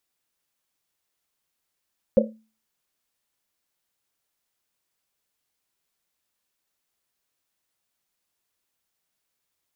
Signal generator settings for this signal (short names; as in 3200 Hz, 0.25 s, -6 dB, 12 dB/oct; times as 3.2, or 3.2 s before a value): Risset drum, pitch 220 Hz, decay 0.36 s, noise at 530 Hz, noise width 100 Hz, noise 60%